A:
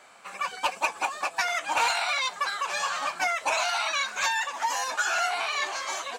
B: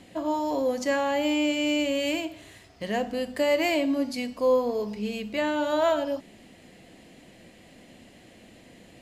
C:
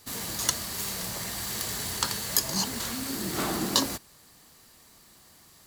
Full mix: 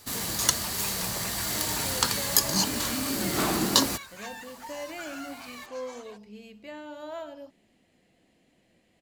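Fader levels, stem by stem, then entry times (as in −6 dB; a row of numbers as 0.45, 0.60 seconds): −16.0, −15.0, +3.0 decibels; 0.00, 1.30, 0.00 seconds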